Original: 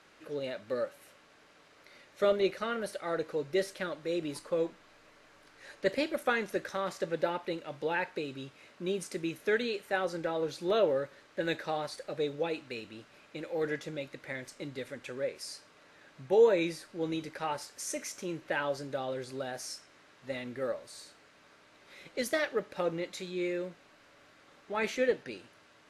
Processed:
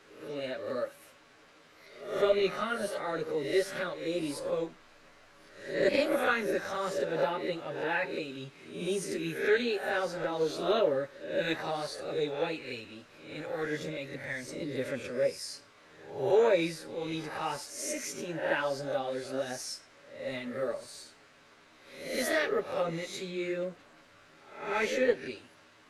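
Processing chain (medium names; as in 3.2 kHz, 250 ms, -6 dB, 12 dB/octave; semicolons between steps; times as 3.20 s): reverse spectral sustain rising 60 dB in 0.63 s; chorus voices 6, 1.4 Hz, delay 10 ms, depth 3 ms; trim +2.5 dB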